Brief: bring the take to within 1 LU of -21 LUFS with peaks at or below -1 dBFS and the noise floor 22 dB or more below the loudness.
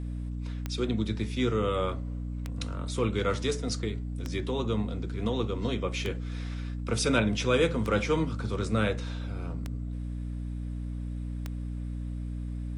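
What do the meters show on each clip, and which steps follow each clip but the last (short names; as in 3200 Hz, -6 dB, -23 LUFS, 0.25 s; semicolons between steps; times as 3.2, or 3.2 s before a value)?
clicks 7; hum 60 Hz; harmonics up to 300 Hz; hum level -32 dBFS; loudness -31.0 LUFS; peak -10.0 dBFS; loudness target -21.0 LUFS
-> de-click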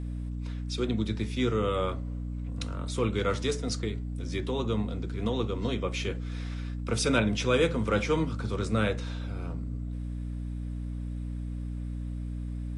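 clicks 0; hum 60 Hz; harmonics up to 300 Hz; hum level -32 dBFS
-> de-hum 60 Hz, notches 5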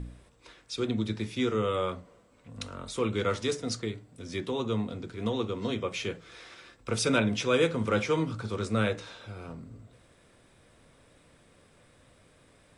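hum none; loudness -30.5 LUFS; peak -11.5 dBFS; loudness target -21.0 LUFS
-> gain +9.5 dB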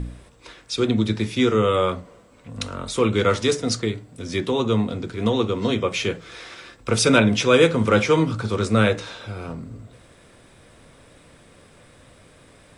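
loudness -21.0 LUFS; peak -2.0 dBFS; noise floor -52 dBFS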